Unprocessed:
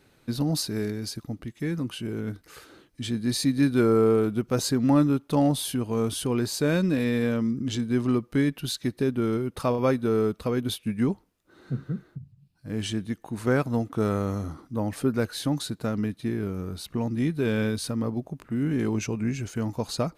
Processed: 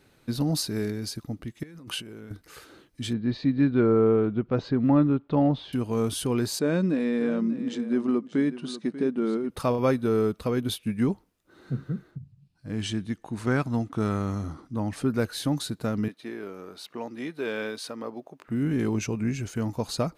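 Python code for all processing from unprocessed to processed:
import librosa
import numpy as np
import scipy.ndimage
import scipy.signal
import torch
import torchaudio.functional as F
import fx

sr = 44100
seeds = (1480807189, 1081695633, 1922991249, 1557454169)

y = fx.chain(x, sr, fx.over_compress(threshold_db=-38.0, ratio=-1.0),
    fx.low_shelf(hz=300.0, db=-7.5), at=(1.63, 2.31))
y = fx.chain(y, sr, fx.lowpass(hz=4000.0, slope=24),
    fx.high_shelf(hz=2700.0, db=-10.5), at=(3.13, 5.73))
y = fx.chain(y, sr, fx.brickwall_bandpass(low_hz=150.0, high_hz=10000.0),
    fx.high_shelf(hz=2200.0, db=-10.5),
    fx.echo_single(ms=590, db=-14.0), at=(6.59, 9.5))
y = fx.chain(y, sr, fx.lowpass(hz=9100.0, slope=12),
    fx.dynamic_eq(hz=500.0, q=2.4, threshold_db=-41.0, ratio=4.0, max_db=-7), at=(12.11, 15.1))
y = fx.chain(y, sr, fx.highpass(hz=430.0, slope=12),
    fx.peak_eq(hz=11000.0, db=-8.5, octaves=1.4), at=(16.08, 18.48))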